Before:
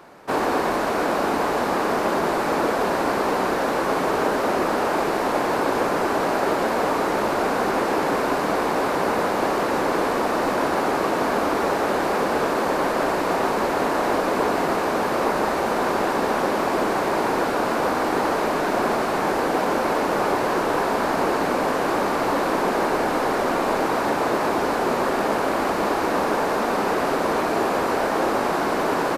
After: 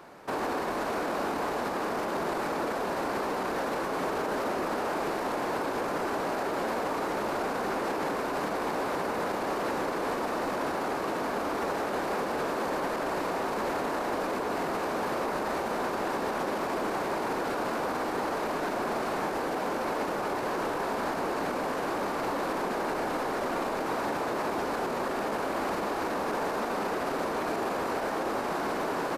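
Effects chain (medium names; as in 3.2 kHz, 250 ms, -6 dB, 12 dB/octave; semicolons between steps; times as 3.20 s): peak limiter -19.5 dBFS, peak gain reduction 10.5 dB; trim -3 dB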